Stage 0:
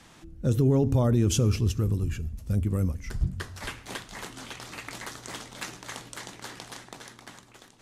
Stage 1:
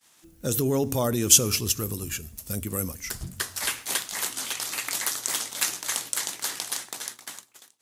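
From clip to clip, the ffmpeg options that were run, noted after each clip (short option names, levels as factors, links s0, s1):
-af "agate=range=0.0224:threshold=0.00708:ratio=3:detection=peak,aemphasis=mode=production:type=riaa,volume=1.58"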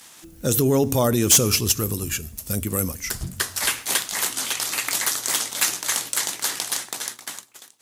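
-af "acompressor=mode=upward:threshold=0.00631:ratio=2.5,asoftclip=type=hard:threshold=0.168,volume=1.88"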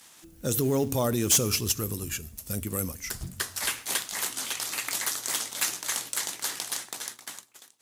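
-af "acrusher=bits=6:mode=log:mix=0:aa=0.000001,volume=0.473"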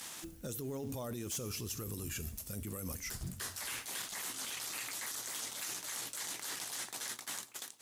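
-af "alimiter=level_in=1.41:limit=0.0631:level=0:latency=1:release=15,volume=0.708,areverse,acompressor=threshold=0.00501:ratio=6,areverse,volume=2.24"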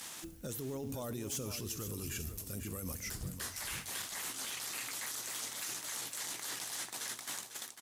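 -af "aecho=1:1:499:0.316"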